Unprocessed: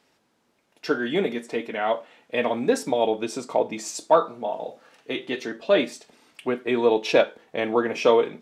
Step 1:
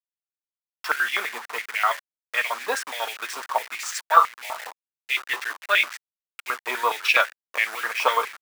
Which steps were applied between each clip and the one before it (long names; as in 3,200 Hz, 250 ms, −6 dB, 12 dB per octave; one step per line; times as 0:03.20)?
hold until the input has moved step −32 dBFS
high-pass on a step sequencer 12 Hz 960–2,300 Hz
level +2 dB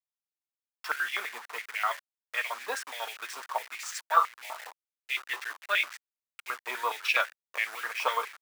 low-shelf EQ 240 Hz −9 dB
level −7 dB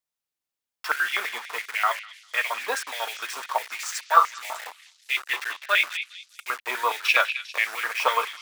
echo through a band-pass that steps 200 ms, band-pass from 3,100 Hz, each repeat 0.7 octaves, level −8 dB
level +6 dB